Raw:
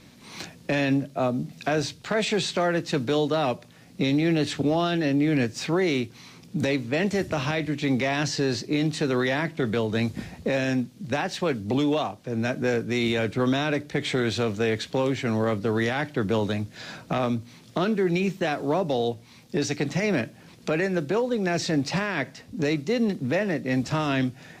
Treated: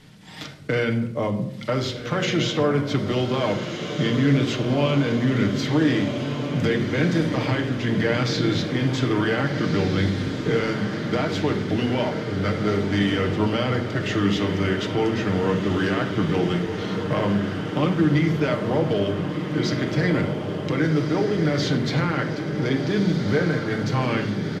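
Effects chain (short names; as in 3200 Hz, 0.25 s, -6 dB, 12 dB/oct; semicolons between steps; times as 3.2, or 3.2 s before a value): pitch shift -3 st; diffused feedback echo 1.527 s, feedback 66%, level -7 dB; on a send at -3.5 dB: reverb RT60 0.80 s, pre-delay 7 ms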